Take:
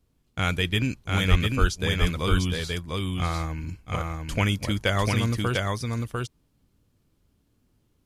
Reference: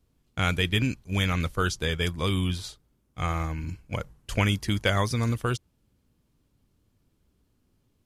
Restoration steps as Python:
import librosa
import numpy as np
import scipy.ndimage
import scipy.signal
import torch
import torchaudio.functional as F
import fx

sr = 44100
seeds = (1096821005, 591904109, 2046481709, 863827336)

y = fx.highpass(x, sr, hz=140.0, slope=24, at=(1.3, 1.42), fade=0.02)
y = fx.highpass(y, sr, hz=140.0, slope=24, at=(1.6, 1.72), fade=0.02)
y = fx.fix_echo_inverse(y, sr, delay_ms=699, level_db=-3.0)